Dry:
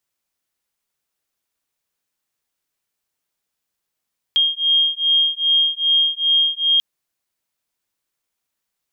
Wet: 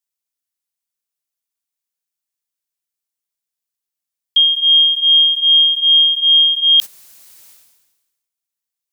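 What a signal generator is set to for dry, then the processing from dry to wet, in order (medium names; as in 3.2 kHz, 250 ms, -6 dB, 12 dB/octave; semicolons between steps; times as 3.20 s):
beating tones 3.23 kHz, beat 2.5 Hz, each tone -17.5 dBFS 2.44 s
gate -23 dBFS, range -14 dB; treble shelf 3.3 kHz +11 dB; decay stretcher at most 49 dB/s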